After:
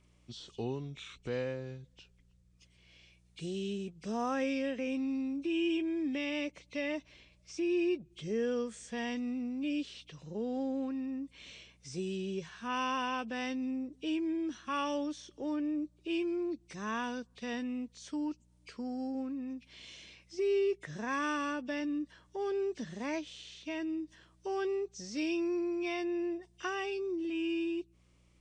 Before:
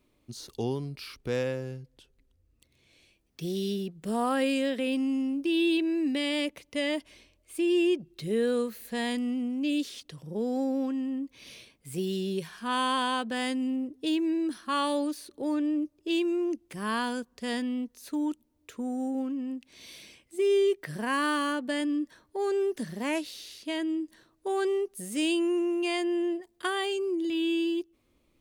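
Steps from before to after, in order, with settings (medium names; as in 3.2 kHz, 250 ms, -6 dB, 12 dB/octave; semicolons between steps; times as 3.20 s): knee-point frequency compression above 2.1 kHz 1.5:1; mains buzz 60 Hz, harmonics 3, -61 dBFS -4 dB/octave; tape noise reduction on one side only encoder only; trim -6 dB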